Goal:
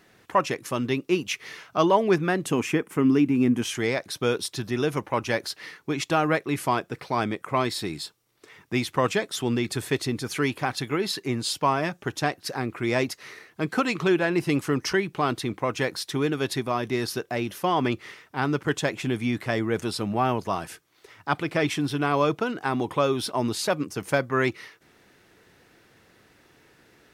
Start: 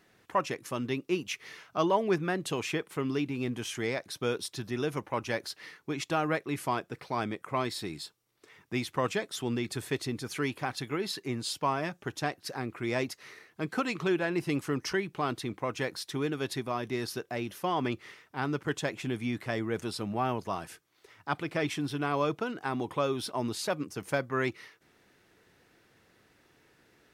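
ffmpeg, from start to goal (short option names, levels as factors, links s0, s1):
-filter_complex "[0:a]asettb=1/sr,asplit=3[s0][s1][s2];[s0]atrim=end=2.464[s3];[s1]atrim=start=2.46:end=3.62,asetpts=PTS-STARTPTS,afade=t=in:d=0.004:c=qsin,afade=t=out:st=1.156:d=0.004:c=qsin,equalizer=f=250:t=o:w=0.67:g=8,equalizer=f=630:t=o:w=0.67:g=-3,equalizer=f=4000:t=o:w=0.67:g=-11[s4];[s2]atrim=start=3.616[s5];[s3][s4]acrossfade=d=0.004:c1=hsin:c2=qsin[s6];[s6][s5]acrossfade=d=0.004:c1=qsin:c2=hsin,volume=2.11"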